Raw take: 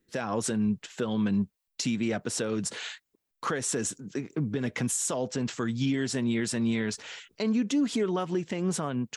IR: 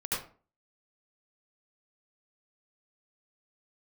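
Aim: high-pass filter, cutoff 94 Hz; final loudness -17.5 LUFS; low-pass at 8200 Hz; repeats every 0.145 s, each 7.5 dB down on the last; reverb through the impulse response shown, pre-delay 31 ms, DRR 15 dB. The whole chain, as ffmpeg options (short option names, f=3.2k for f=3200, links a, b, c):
-filter_complex "[0:a]highpass=94,lowpass=8.2k,aecho=1:1:145|290|435|580|725:0.422|0.177|0.0744|0.0312|0.0131,asplit=2[a][b];[1:a]atrim=start_sample=2205,adelay=31[c];[b][c]afir=irnorm=-1:irlink=0,volume=-21dB[d];[a][d]amix=inputs=2:normalize=0,volume=11.5dB"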